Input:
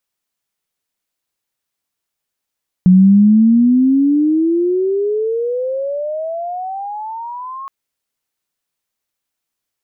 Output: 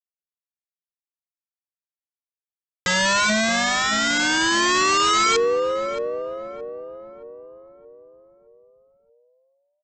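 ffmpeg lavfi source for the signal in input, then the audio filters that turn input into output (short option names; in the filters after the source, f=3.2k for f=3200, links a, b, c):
-f lavfi -i "aevalsrc='pow(10,(-4-21.5*t/4.82)/20)*sin(2*PI*180*4.82/log(1100/180)*(exp(log(1100/180)*t/4.82)-1))':d=4.82:s=44100"
-filter_complex "[0:a]agate=range=-41dB:threshold=-20dB:ratio=16:detection=peak,aresample=16000,aeval=exprs='(mod(5.96*val(0)+1,2)-1)/5.96':c=same,aresample=44100,asplit=2[a][b];[b]adelay=622,lowpass=f=980:p=1,volume=-6.5dB,asplit=2[c][d];[d]adelay=622,lowpass=f=980:p=1,volume=0.52,asplit=2[e][f];[f]adelay=622,lowpass=f=980:p=1,volume=0.52,asplit=2[g][h];[h]adelay=622,lowpass=f=980:p=1,volume=0.52,asplit=2[i][j];[j]adelay=622,lowpass=f=980:p=1,volume=0.52,asplit=2[k][l];[l]adelay=622,lowpass=f=980:p=1,volume=0.52[m];[a][c][e][g][i][k][m]amix=inputs=7:normalize=0"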